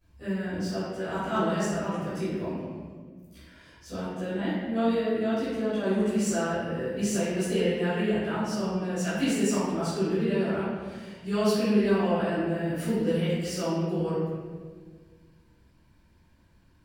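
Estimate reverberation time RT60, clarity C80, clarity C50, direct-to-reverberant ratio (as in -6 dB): 1.6 s, 0.0 dB, -3.0 dB, -16.5 dB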